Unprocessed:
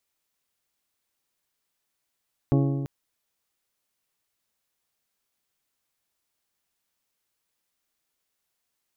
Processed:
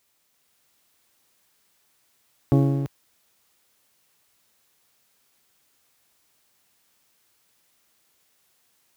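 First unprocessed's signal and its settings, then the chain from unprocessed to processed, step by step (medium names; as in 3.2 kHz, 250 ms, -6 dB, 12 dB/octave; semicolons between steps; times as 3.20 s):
metal hit bell, length 0.34 s, lowest mode 138 Hz, modes 8, decay 1.72 s, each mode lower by 3.5 dB, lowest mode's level -18 dB
companding laws mixed up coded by mu; high-pass 59 Hz; level rider gain up to 3 dB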